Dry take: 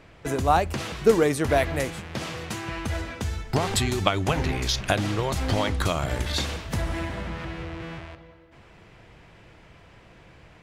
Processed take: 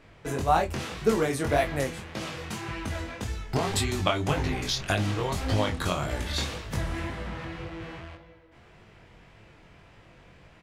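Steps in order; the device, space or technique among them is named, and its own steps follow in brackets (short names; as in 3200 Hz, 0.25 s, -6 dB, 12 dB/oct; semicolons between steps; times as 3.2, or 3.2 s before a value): double-tracked vocal (doubler 28 ms -11 dB; chorus 1.8 Hz, delay 18.5 ms, depth 5.3 ms)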